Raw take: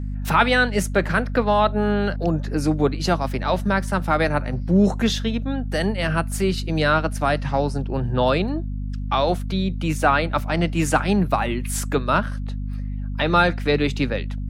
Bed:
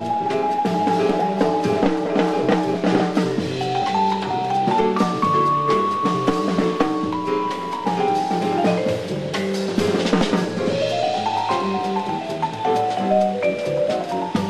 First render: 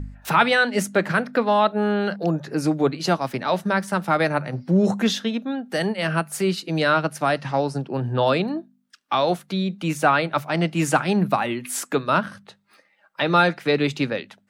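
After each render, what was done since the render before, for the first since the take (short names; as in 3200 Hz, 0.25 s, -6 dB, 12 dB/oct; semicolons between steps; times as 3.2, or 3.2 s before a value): de-hum 50 Hz, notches 5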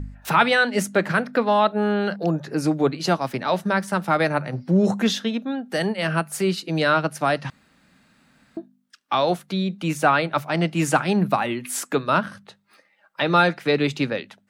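7.5–8.57 room tone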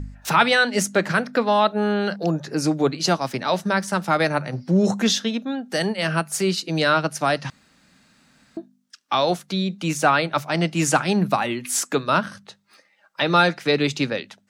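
bell 6000 Hz +8 dB 1.2 oct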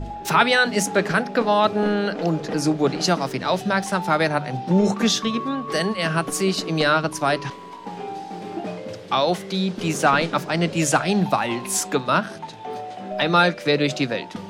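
add bed -12.5 dB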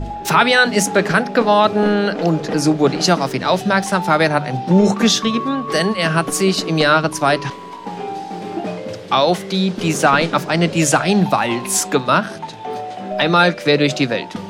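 gain +5.5 dB; limiter -2 dBFS, peak gain reduction 3 dB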